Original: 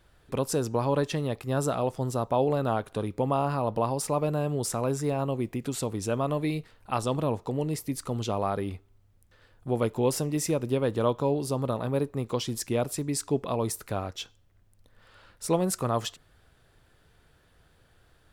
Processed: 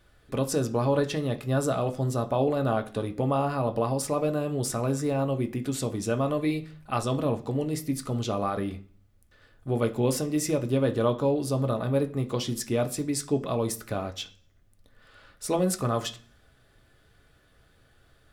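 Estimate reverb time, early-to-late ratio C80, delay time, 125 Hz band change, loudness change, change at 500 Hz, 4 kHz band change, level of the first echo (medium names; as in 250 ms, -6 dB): 0.45 s, 20.5 dB, no echo, +1.5 dB, +1.0 dB, +1.0 dB, +1.0 dB, no echo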